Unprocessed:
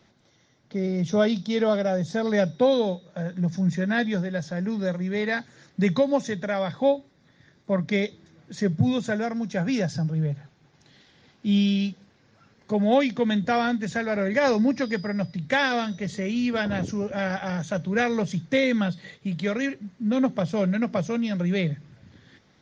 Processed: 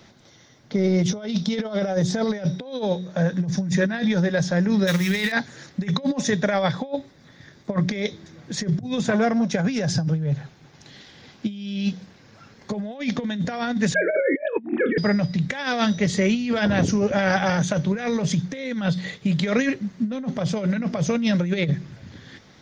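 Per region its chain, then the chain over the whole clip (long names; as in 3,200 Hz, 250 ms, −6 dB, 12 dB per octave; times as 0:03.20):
0:04.87–0:05.32: mu-law and A-law mismatch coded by mu + drawn EQ curve 180 Hz 0 dB, 620 Hz −7 dB, 2,700 Hz +10 dB + hard clipping −16 dBFS
0:09.03–0:09.50: high-shelf EQ 5,400 Hz −8.5 dB + saturating transformer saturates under 600 Hz
0:13.94–0:14.98: three sine waves on the formant tracks + flutter between parallel walls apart 4.4 metres, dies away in 0.22 s
whole clip: high-shelf EQ 4,400 Hz +3.5 dB; hum removal 182.6 Hz, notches 2; compressor whose output falls as the input rises −27 dBFS, ratio −0.5; level +5.5 dB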